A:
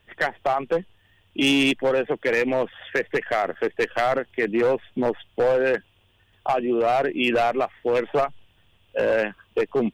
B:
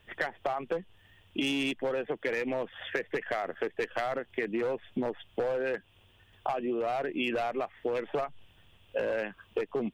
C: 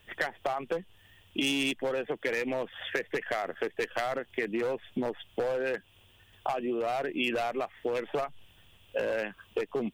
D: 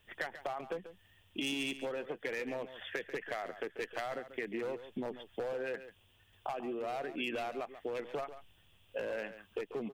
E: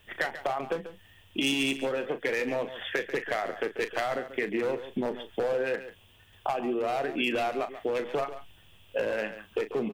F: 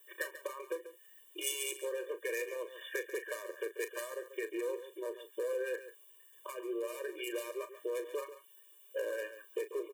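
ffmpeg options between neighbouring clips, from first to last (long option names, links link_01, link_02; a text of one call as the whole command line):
ffmpeg -i in.wav -af "acompressor=threshold=-29dB:ratio=6" out.wav
ffmpeg -i in.wav -af "highshelf=frequency=4500:gain=9.5" out.wav
ffmpeg -i in.wav -af "aecho=1:1:140:0.237,volume=-7.5dB" out.wav
ffmpeg -i in.wav -filter_complex "[0:a]asplit=2[link_01][link_02];[link_02]adelay=37,volume=-11dB[link_03];[link_01][link_03]amix=inputs=2:normalize=0,volume=8.5dB" out.wav
ffmpeg -i in.wav -filter_complex "[0:a]acrossover=split=400|1300[link_01][link_02][link_03];[link_03]aexciter=amount=6:drive=6.5:freq=6700[link_04];[link_01][link_02][link_04]amix=inputs=3:normalize=0,afftfilt=real='re*eq(mod(floor(b*sr/1024/310),2),1)':imag='im*eq(mod(floor(b*sr/1024/310),2),1)':win_size=1024:overlap=0.75,volume=-7dB" out.wav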